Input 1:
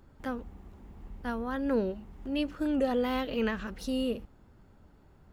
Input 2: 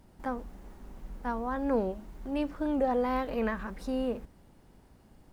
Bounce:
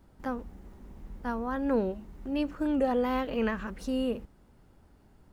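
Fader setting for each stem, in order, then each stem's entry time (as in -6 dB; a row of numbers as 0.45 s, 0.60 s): -3.5 dB, -5.5 dB; 0.00 s, 0.00 s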